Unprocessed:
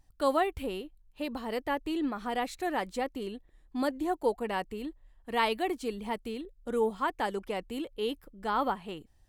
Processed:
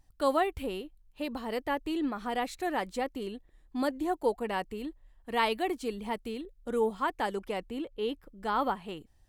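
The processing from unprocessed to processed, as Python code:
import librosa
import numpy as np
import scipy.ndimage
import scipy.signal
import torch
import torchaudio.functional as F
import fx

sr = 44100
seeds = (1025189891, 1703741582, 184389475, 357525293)

y = fx.high_shelf(x, sr, hz=fx.line((7.69, 3700.0), (8.26, 6100.0)), db=-10.5, at=(7.69, 8.26), fade=0.02)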